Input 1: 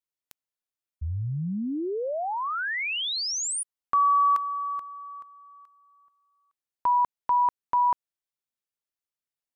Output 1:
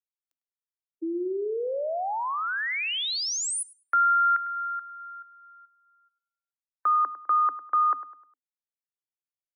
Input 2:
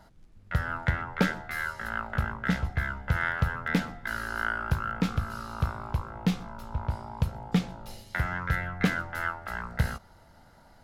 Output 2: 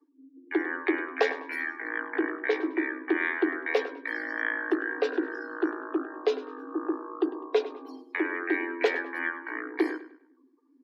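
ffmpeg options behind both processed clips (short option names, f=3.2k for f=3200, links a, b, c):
-filter_complex "[0:a]afftdn=nr=31:nf=-43,asplit=2[a][b];[b]adelay=102,lowpass=f=4k:p=1,volume=-14dB,asplit=2[c][d];[d]adelay=102,lowpass=f=4k:p=1,volume=0.37,asplit=2[e][f];[f]adelay=102,lowpass=f=4k:p=1,volume=0.37,asplit=2[g][h];[h]adelay=102,lowpass=f=4k:p=1,volume=0.37[i];[a][c][e][g][i]amix=inputs=5:normalize=0,afreqshift=250"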